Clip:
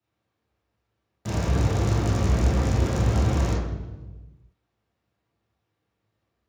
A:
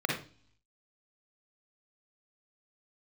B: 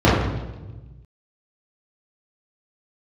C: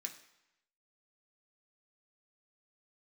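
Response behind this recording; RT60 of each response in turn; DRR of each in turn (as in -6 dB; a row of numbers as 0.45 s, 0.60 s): B; no single decay rate, 1.2 s, 0.85 s; -1.5 dB, -9.5 dB, 1.5 dB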